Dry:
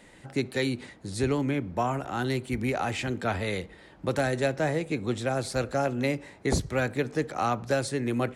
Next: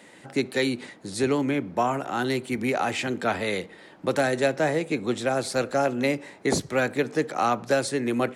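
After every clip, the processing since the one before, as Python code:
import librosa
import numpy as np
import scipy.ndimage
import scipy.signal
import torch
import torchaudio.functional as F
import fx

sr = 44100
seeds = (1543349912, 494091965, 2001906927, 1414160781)

y = scipy.signal.sosfilt(scipy.signal.butter(2, 190.0, 'highpass', fs=sr, output='sos'), x)
y = F.gain(torch.from_numpy(y), 4.0).numpy()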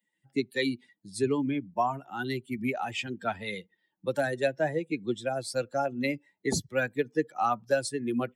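y = fx.bin_expand(x, sr, power=2.0)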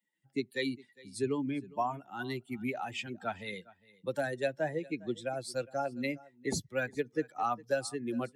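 y = x + 10.0 ** (-22.0 / 20.0) * np.pad(x, (int(407 * sr / 1000.0), 0))[:len(x)]
y = F.gain(torch.from_numpy(y), -5.0).numpy()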